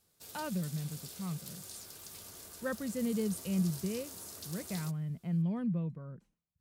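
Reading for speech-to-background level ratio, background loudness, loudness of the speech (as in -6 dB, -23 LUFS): 9.5 dB, -46.0 LUFS, -36.5 LUFS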